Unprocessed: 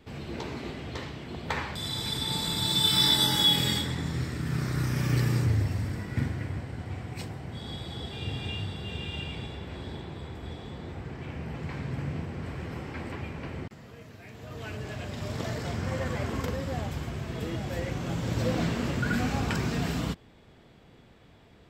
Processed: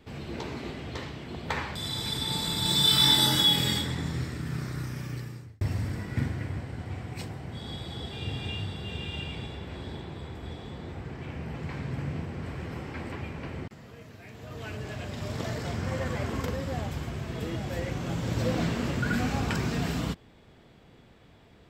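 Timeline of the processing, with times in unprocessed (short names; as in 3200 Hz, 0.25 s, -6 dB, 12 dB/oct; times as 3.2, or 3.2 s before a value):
2.62–3.41 doubler 36 ms -3 dB
4.05–5.61 fade out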